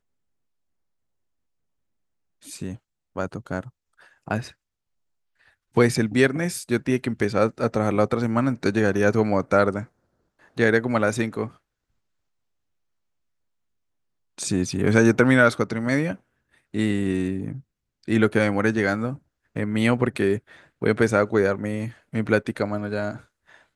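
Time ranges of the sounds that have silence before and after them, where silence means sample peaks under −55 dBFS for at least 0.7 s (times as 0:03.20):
0:02.42–0:04.54
0:05.40–0:11.58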